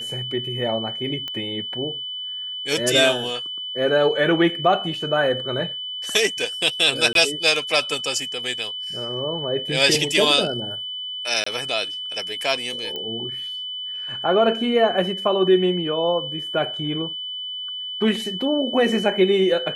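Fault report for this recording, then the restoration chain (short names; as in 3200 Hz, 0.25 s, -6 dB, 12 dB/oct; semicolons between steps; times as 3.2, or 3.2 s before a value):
tone 3000 Hz -28 dBFS
1.28 pop -16 dBFS
7.13–7.15 gap 22 ms
11.44–11.46 gap 24 ms
12.96 pop -17 dBFS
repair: de-click; notch 3000 Hz, Q 30; interpolate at 7.13, 22 ms; interpolate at 11.44, 24 ms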